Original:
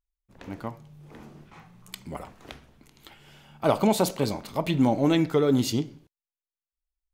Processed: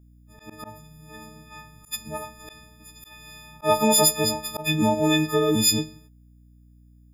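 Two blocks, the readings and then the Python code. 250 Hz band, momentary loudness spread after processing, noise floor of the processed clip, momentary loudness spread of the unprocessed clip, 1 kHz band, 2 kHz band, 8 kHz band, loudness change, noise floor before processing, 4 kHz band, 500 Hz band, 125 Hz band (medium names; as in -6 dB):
-0.5 dB, 18 LU, -53 dBFS, 19 LU, +4.0 dB, +7.5 dB, +14.0 dB, +3.5 dB, under -85 dBFS, +10.5 dB, +1.5 dB, -0.5 dB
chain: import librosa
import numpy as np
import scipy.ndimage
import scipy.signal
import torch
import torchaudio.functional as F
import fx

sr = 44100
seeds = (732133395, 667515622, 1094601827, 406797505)

y = fx.freq_snap(x, sr, grid_st=6)
y = fx.add_hum(y, sr, base_hz=60, snr_db=27)
y = fx.auto_swell(y, sr, attack_ms=115.0)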